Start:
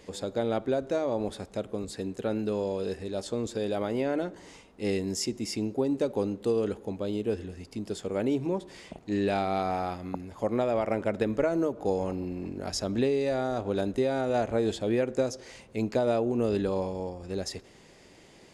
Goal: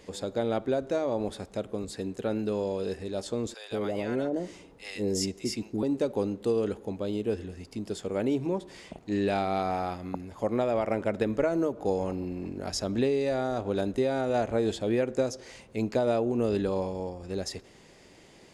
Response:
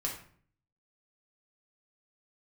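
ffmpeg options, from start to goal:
-filter_complex "[0:a]asettb=1/sr,asplit=3[link_01][link_02][link_03];[link_01]atrim=end=3.544[link_04];[link_02]atrim=start=3.54:end=5.83,asetpts=PTS-STARTPTS,afade=type=in:duration=0.004:curve=qsin,afade=type=out:start_time=2.286:duration=0.004:curve=qsin,acrossover=split=800[link_05][link_06];[link_05]adelay=170[link_07];[link_07][link_06]amix=inputs=2:normalize=0,atrim=end_sample=100989[link_08];[link_03]atrim=start=5.826[link_09];[link_04][link_08]acrossfade=duration=0.004:curve1=hsin:curve2=qsin[link_10];[link_10][link_09]acrossfade=duration=0.004:curve1=qsin:curve2=hsin"

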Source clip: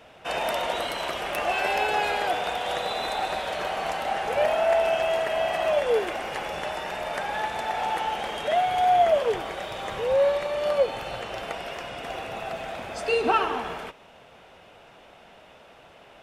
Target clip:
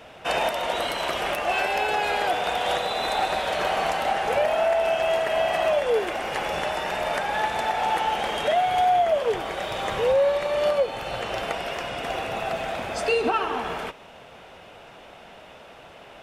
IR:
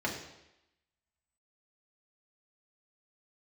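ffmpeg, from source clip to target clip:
-af "alimiter=limit=-18.5dB:level=0:latency=1:release=482,volume=5dB"

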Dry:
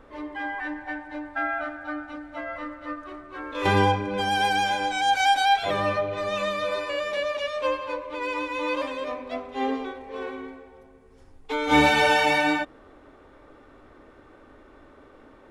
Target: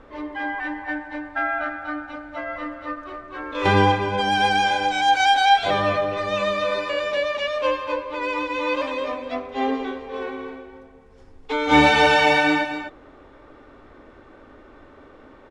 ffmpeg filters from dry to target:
ffmpeg -i in.wav -af "lowpass=6700,aecho=1:1:249:0.316,volume=3.5dB" out.wav

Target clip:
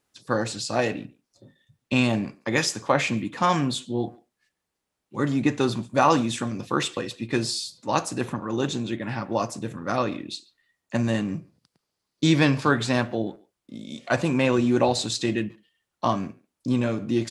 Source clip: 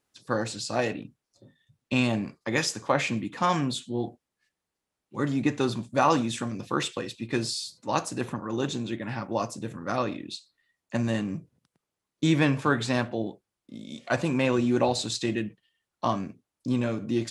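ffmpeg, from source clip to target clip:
ffmpeg -i in.wav -filter_complex "[0:a]asettb=1/sr,asplit=3[link_01][link_02][link_03];[link_01]atrim=end=11.374[link_04];[link_02]atrim=start=11.37:end=12.71,asetpts=PTS-STARTPTS,afade=type=in:duration=0.004:curve=qsin,afade=type=out:start_time=1.336:duration=0.004:curve=qsin,equalizer=frequency=4700:width_type=o:width=0.48:gain=10[link_05];[link_03]atrim=start=12.706[link_06];[link_04][link_05]acrossfade=duration=0.004:curve1=hsin:curve2=qsin[link_07];[link_07][link_06]acrossfade=duration=0.004:curve1=qsin:curve2=hsin,asplit=2[link_08][link_09];[link_09]adelay=140,highpass=300,lowpass=3400,asoftclip=type=hard:threshold=-28dB,volume=-22dB[link_10];[link_08][link_10]amix=inputs=2:normalize=0,volume=3dB" out.wav

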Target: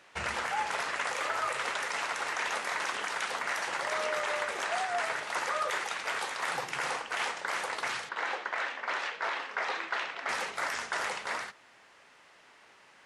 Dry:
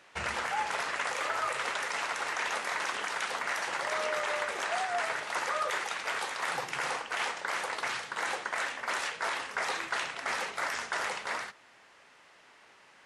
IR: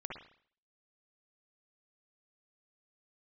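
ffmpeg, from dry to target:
-filter_complex "[0:a]asettb=1/sr,asplit=3[link_01][link_02][link_03];[link_01]atrim=end=8.094[link_04];[link_02]atrim=start=8.09:end=10.29,asetpts=PTS-STARTPTS,afade=type=in:duration=0.004:curve=qsin,afade=type=out:start_time=2.196:duration=0.004:curve=qsin,highpass=270,lowpass=4000[link_05];[link_03]atrim=start=10.286[link_06];[link_04][link_05]acrossfade=duration=0.004:curve1=hsin:curve2=qsin[link_07];[link_07][link_06]acrossfade=duration=0.004:curve1=qsin:curve2=hsin"

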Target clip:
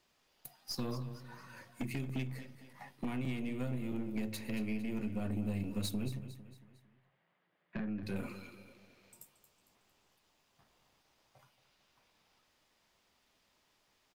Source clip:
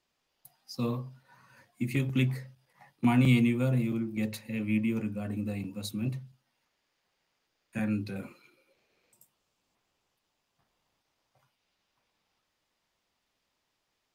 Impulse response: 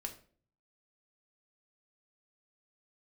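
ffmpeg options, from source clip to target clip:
-filter_complex "[0:a]acompressor=threshold=-38dB:ratio=20,asettb=1/sr,asplit=3[link_01][link_02][link_03];[link_01]atrim=end=6.194[link_04];[link_02]atrim=start=6.19:end=8.03,asetpts=PTS-STARTPTS,afade=type=in:duration=0.004:curve=qsin,afade=type=out:start_time=1.836:duration=0.004:curve=qsin,highpass=170,equalizer=frequency=170:width_type=q:width=4:gain=10,equalizer=frequency=250:width_type=q:width=4:gain=-7,equalizer=frequency=440:width_type=q:width=4:gain=-5,equalizer=frequency=880:width_type=q:width=4:gain=-4,equalizer=frequency=1400:width_type=q:width=4:gain=-4,equalizer=frequency=2500:width_type=q:width=4:gain=-7,lowpass=frequency=2600:width=0.5412,lowpass=frequency=2600:width=1.3066[link_05];[link_03]atrim=start=8.026[link_06];[link_04][link_05]acrossfade=duration=0.004:curve1=hsin:curve2=qsin[link_07];[link_07][link_06]acrossfade=duration=0.004:curve1=qsin:curve2=hsin,aeval=exprs='0.0447*(cos(1*acos(clip(val(0)/0.0447,-1,1)))-cos(1*PI/2))+0.01*(cos(5*acos(clip(val(0)/0.0447,-1,1)))-cos(5*PI/2))+0.00631*(cos(6*acos(clip(val(0)/0.0447,-1,1)))-cos(6*PI/2))':channel_layout=same,aecho=1:1:227|454|681|908:0.224|0.101|0.0453|0.0204,asplit=2[link_08][link_09];[1:a]atrim=start_sample=2205[link_10];[link_09][link_10]afir=irnorm=-1:irlink=0,volume=-9.5dB[link_11];[link_08][link_11]amix=inputs=2:normalize=0,volume=-3dB"

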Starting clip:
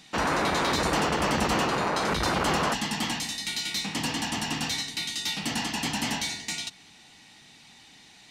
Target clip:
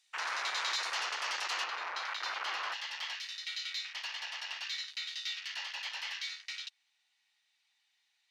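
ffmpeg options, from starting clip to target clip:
ffmpeg -i in.wav -af "highpass=1400,afwtdn=0.0141,asetnsamples=nb_out_samples=441:pad=0,asendcmd='1.64 equalizer g -5.5',equalizer=frequency=8700:width_type=o:width=1.4:gain=7,volume=-5dB" out.wav

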